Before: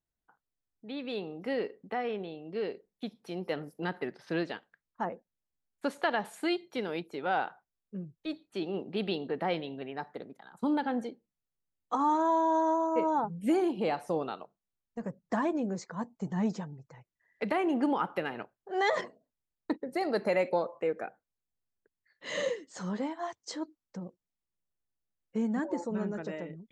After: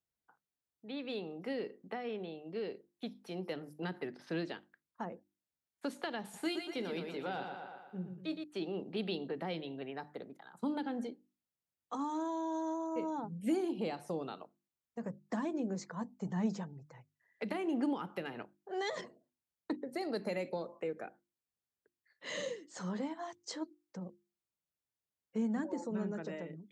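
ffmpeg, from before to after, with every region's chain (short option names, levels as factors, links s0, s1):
-filter_complex "[0:a]asettb=1/sr,asplit=3[s0][s1][s2];[s0]atrim=end=6.224[s3];[s1]atrim=start=6.22:end=8.44,asetpts=PTS-STARTPTS,afade=t=in:d=0.004:c=qsin,afade=t=out:st=2.216:d=0.004:c=qsin,asplit=2[s4][s5];[s5]adelay=22,volume=0.251[s6];[s4][s6]amix=inputs=2:normalize=0,atrim=end_sample=97902,aecho=1:1:117|234|351|468|585|702:0.473|0.227|0.109|0.0523|0.0251|0.0121,atrim=end_sample=97902[s7];[s2]atrim=start=8.436[s8];[s3][s7]acrossfade=d=0.004:c1=hsin:c2=qsin[s9];[s9][s8]acrossfade=d=0.004:c1=qsin:c2=hsin,highpass=71,bandreject=f=50:t=h:w=6,bandreject=f=100:t=h:w=6,bandreject=f=150:t=h:w=6,bandreject=f=200:t=h:w=6,bandreject=f=250:t=h:w=6,bandreject=f=300:t=h:w=6,bandreject=f=350:t=h:w=6,acrossover=split=360|3000[s10][s11][s12];[s11]acompressor=threshold=0.0112:ratio=4[s13];[s10][s13][s12]amix=inputs=3:normalize=0,volume=0.75"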